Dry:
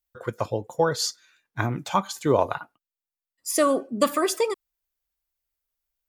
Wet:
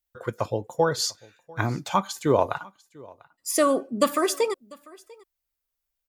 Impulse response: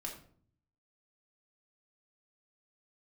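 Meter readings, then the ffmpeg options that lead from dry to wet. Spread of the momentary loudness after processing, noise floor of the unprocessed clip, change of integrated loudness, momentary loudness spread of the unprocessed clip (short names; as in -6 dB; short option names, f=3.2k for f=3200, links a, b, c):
13 LU, under -85 dBFS, -0.5 dB, 13 LU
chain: -af "aecho=1:1:695:0.0631"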